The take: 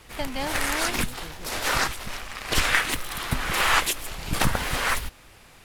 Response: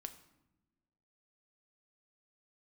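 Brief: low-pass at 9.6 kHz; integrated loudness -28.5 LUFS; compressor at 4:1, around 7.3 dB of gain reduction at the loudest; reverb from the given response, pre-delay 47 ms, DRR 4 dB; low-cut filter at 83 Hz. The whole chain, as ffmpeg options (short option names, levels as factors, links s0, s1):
-filter_complex "[0:a]highpass=83,lowpass=9600,acompressor=threshold=0.0501:ratio=4,asplit=2[s0][s1];[1:a]atrim=start_sample=2205,adelay=47[s2];[s1][s2]afir=irnorm=-1:irlink=0,volume=1[s3];[s0][s3]amix=inputs=2:normalize=0"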